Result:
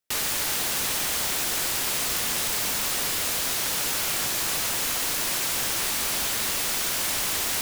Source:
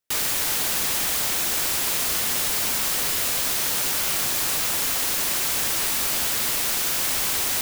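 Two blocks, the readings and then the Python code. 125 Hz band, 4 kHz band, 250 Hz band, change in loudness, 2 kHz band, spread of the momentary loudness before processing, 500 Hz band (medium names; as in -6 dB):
-1.0 dB, -1.0 dB, -1.0 dB, -3.0 dB, -1.0 dB, 0 LU, -1.0 dB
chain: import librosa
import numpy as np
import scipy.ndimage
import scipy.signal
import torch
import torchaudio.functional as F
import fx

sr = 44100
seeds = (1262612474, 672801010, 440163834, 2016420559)

y = fx.doppler_dist(x, sr, depth_ms=0.17)
y = F.gain(torch.from_numpy(y), -1.0).numpy()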